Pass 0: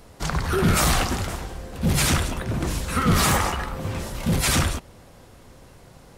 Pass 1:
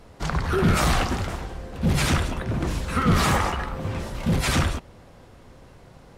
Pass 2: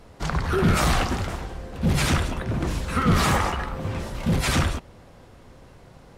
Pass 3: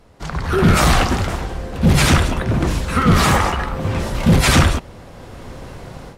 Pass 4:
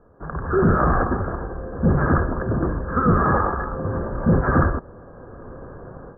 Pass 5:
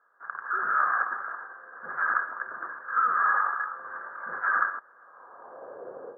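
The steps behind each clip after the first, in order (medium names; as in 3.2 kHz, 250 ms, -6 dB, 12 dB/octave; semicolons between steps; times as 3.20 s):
treble shelf 6.2 kHz -11.5 dB
no audible change
level rider gain up to 16.5 dB; trim -2 dB
rippled Chebyshev low-pass 1.7 kHz, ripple 6 dB
high-pass sweep 1.5 kHz -> 470 Hz, 4.97–5.86 s; trim -5 dB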